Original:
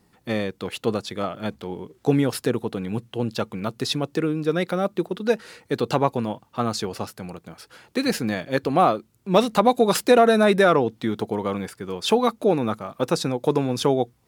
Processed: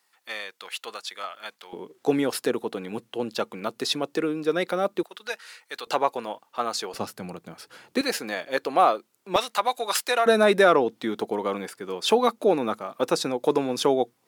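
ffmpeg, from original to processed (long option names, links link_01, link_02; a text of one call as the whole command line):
ffmpeg -i in.wav -af "asetnsamples=nb_out_samples=441:pad=0,asendcmd='1.73 highpass f 310;5.03 highpass f 1200;5.87 highpass f 520;6.94 highpass f 150;8.01 highpass f 470;9.36 highpass f 980;10.26 highpass f 280',highpass=1200" out.wav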